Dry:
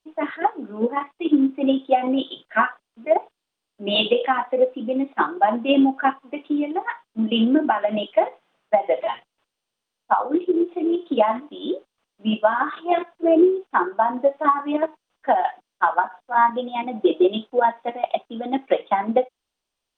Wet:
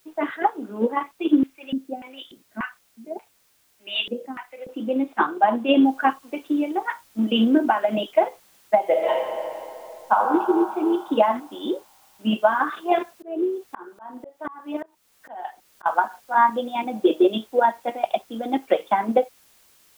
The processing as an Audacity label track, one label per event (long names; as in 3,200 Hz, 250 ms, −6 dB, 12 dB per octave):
1.430000	4.690000	auto-filter band-pass square 1.7 Hz 220–2,300 Hz
5.850000	5.850000	noise floor change −63 dB −57 dB
8.810000	10.180000	thrown reverb, RT60 2.8 s, DRR 0.5 dB
12.980000	15.860000	volume swells 554 ms